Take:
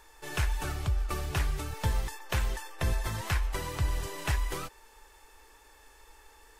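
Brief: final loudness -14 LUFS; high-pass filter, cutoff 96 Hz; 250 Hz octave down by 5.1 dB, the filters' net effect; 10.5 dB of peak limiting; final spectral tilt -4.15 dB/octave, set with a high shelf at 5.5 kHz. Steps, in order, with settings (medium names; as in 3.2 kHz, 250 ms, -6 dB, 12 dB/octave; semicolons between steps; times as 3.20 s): high-pass 96 Hz; peaking EQ 250 Hz -8.5 dB; treble shelf 5.5 kHz -3.5 dB; trim +26.5 dB; peak limiter -3 dBFS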